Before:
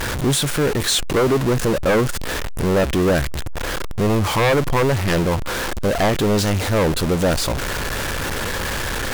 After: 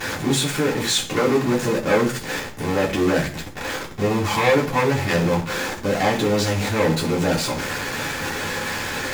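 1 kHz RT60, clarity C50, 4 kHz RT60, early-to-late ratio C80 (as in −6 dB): 0.35 s, 11.0 dB, 0.50 s, 15.5 dB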